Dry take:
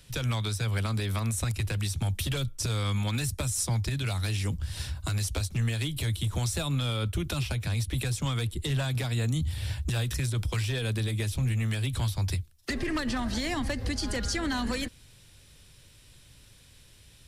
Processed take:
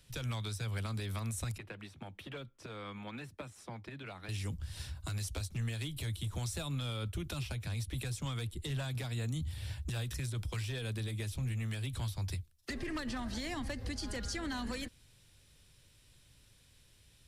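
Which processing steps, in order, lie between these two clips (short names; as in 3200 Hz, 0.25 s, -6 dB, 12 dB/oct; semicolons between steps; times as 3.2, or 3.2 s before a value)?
1.58–4.29 three-band isolator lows -22 dB, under 180 Hz, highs -21 dB, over 2900 Hz; gain -8.5 dB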